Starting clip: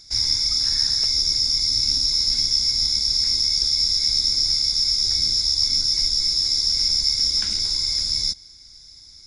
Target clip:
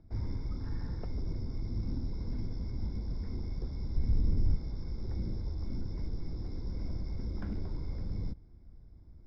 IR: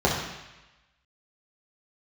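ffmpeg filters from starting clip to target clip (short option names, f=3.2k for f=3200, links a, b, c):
-filter_complex "[0:a]lowpass=f=1k:p=1,acrossover=split=110[a][b];[a]asoftclip=type=tanh:threshold=-36.5dB[c];[b]adynamicsmooth=sensitivity=0.5:basefreq=670[d];[c][d]amix=inputs=2:normalize=0,asettb=1/sr,asplit=3[e][f][g];[e]atrim=end=3.964[h];[f]atrim=start=3.96:end=4.56,asetpts=PTS-STARTPTS,afade=t=in:d=0.004:c=qsin,afade=t=out:st=0.596:d=0.004:c=qsin,lowshelf=f=200:g=10[i];[g]atrim=start=4.556[j];[h][i]acrossfade=d=0.004:c1=hsin:c2=qsin[k];[k][j]acrossfade=d=0.004:c1=qsin:c2=hsin,volume=6dB"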